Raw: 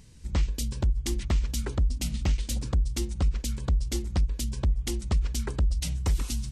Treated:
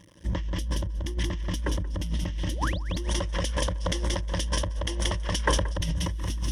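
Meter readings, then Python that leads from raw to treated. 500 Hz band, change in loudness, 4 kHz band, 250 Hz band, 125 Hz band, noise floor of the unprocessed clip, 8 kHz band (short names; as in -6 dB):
+6.5 dB, 0.0 dB, +6.0 dB, +1.5 dB, -1.5 dB, -40 dBFS, +1.0 dB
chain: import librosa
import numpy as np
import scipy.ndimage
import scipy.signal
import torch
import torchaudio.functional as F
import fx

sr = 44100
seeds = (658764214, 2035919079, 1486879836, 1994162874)

y = np.sign(x) * np.maximum(np.abs(x) - 10.0 ** (-50.0 / 20.0), 0.0)
y = scipy.signal.sosfilt(scipy.signal.butter(4, 48.0, 'highpass', fs=sr, output='sos'), y)
y = fx.spec_paint(y, sr, seeds[0], shape='rise', start_s=2.49, length_s=0.31, low_hz=210.0, high_hz=5700.0, level_db=-39.0)
y = fx.echo_feedback(y, sr, ms=180, feedback_pct=19, wet_db=-6)
y = fx.vibrato(y, sr, rate_hz=2.0, depth_cents=31.0)
y = fx.ripple_eq(y, sr, per_octave=1.2, db=12)
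y = fx.over_compress(y, sr, threshold_db=-31.0, ratio=-1.0)
y = fx.spec_box(y, sr, start_s=3.05, length_s=2.73, low_hz=410.0, high_hz=11000.0, gain_db=9)
y = fx.bass_treble(y, sr, bass_db=-3, treble_db=-10)
y = fx.sustainer(y, sr, db_per_s=42.0)
y = y * 10.0 ** (4.0 / 20.0)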